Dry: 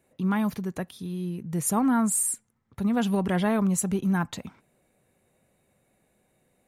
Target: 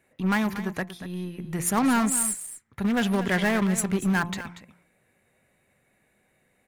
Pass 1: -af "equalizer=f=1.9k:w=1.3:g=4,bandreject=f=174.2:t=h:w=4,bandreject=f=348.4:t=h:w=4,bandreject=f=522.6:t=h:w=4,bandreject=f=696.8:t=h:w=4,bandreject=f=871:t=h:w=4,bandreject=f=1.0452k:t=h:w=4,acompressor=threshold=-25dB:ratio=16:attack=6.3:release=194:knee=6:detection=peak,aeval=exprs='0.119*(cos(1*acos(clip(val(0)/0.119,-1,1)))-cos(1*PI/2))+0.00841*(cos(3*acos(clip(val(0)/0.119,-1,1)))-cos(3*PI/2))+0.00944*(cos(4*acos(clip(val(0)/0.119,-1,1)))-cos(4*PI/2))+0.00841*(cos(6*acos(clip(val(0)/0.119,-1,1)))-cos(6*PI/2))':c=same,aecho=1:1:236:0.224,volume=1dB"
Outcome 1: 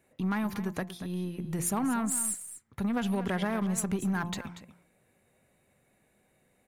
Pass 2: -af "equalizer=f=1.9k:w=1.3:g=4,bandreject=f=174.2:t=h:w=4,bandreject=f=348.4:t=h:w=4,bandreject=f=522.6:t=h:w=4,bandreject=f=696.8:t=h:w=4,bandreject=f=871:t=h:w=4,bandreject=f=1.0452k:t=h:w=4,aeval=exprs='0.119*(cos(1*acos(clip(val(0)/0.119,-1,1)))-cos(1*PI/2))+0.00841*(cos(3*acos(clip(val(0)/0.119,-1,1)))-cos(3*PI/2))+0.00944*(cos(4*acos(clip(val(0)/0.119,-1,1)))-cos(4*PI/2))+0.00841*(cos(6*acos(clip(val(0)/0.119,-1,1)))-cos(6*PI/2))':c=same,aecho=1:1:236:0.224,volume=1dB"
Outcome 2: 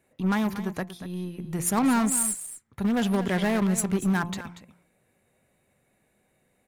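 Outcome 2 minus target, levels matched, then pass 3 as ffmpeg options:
2000 Hz band -4.0 dB
-af "equalizer=f=1.9k:w=1.3:g=10,bandreject=f=174.2:t=h:w=4,bandreject=f=348.4:t=h:w=4,bandreject=f=522.6:t=h:w=4,bandreject=f=696.8:t=h:w=4,bandreject=f=871:t=h:w=4,bandreject=f=1.0452k:t=h:w=4,aeval=exprs='0.119*(cos(1*acos(clip(val(0)/0.119,-1,1)))-cos(1*PI/2))+0.00841*(cos(3*acos(clip(val(0)/0.119,-1,1)))-cos(3*PI/2))+0.00944*(cos(4*acos(clip(val(0)/0.119,-1,1)))-cos(4*PI/2))+0.00841*(cos(6*acos(clip(val(0)/0.119,-1,1)))-cos(6*PI/2))':c=same,aecho=1:1:236:0.224,volume=1dB"

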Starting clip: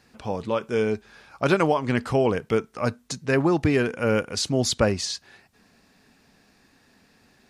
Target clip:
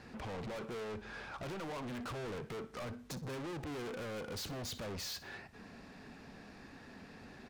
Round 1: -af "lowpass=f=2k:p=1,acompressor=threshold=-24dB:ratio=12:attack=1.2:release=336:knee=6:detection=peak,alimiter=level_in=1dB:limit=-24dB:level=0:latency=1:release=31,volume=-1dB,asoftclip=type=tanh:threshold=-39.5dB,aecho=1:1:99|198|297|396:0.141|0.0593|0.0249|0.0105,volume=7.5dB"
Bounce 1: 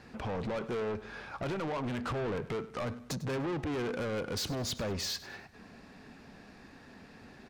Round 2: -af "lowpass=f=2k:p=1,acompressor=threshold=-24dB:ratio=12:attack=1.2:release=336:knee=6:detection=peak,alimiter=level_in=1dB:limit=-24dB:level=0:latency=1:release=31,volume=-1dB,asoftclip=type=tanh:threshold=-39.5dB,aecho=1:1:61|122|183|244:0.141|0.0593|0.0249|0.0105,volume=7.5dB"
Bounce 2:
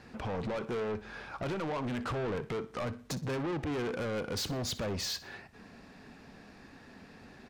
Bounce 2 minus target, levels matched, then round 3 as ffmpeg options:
soft clip: distortion -4 dB
-af "lowpass=f=2k:p=1,acompressor=threshold=-24dB:ratio=12:attack=1.2:release=336:knee=6:detection=peak,alimiter=level_in=1dB:limit=-24dB:level=0:latency=1:release=31,volume=-1dB,asoftclip=type=tanh:threshold=-48.5dB,aecho=1:1:61|122|183|244:0.141|0.0593|0.0249|0.0105,volume=7.5dB"

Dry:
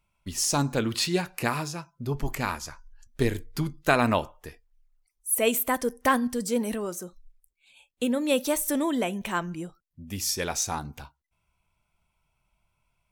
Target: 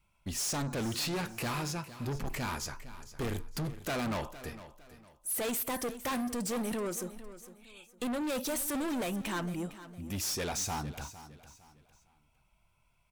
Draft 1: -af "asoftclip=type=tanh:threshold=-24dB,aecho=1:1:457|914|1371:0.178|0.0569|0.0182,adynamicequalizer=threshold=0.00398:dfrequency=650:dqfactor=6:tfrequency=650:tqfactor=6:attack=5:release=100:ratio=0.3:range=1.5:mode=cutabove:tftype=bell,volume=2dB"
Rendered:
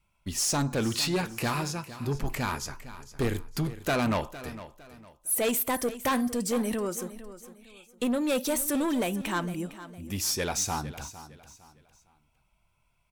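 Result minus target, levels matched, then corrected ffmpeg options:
soft clip: distortion -5 dB
-af "asoftclip=type=tanh:threshold=-33.5dB,aecho=1:1:457|914|1371:0.178|0.0569|0.0182,adynamicequalizer=threshold=0.00398:dfrequency=650:dqfactor=6:tfrequency=650:tqfactor=6:attack=5:release=100:ratio=0.3:range=1.5:mode=cutabove:tftype=bell,volume=2dB"

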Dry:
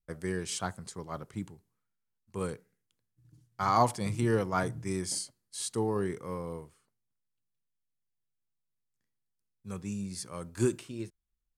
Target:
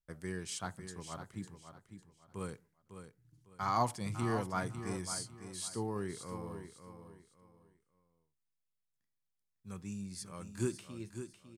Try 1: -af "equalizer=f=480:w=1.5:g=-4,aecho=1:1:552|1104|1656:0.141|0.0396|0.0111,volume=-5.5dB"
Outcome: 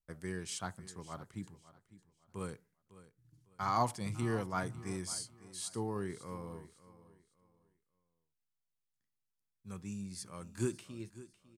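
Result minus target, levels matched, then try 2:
echo-to-direct -7.5 dB
-af "equalizer=f=480:w=1.5:g=-4,aecho=1:1:552|1104|1656:0.335|0.0938|0.0263,volume=-5.5dB"

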